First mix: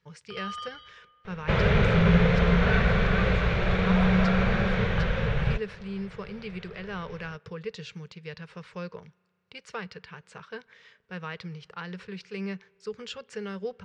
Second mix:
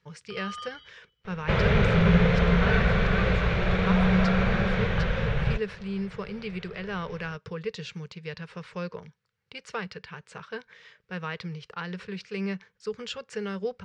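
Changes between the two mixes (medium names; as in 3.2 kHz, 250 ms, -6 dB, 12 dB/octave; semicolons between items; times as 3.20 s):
speech +3.5 dB; reverb: off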